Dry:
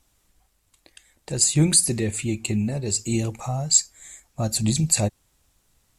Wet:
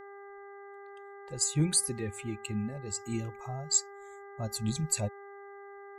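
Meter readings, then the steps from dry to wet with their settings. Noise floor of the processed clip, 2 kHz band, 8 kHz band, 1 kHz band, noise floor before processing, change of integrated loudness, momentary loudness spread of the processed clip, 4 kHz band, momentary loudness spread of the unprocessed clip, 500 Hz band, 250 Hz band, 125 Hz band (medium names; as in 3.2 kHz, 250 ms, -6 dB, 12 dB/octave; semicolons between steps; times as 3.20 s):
-48 dBFS, -7.0 dB, -10.0 dB, -5.5 dB, -67 dBFS, -10.0 dB, 20 LU, -10.0 dB, 12 LU, -8.0 dB, -10.0 dB, -10.5 dB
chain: expander on every frequency bin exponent 1.5; mains buzz 400 Hz, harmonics 5, -40 dBFS -5 dB/octave; trim -8 dB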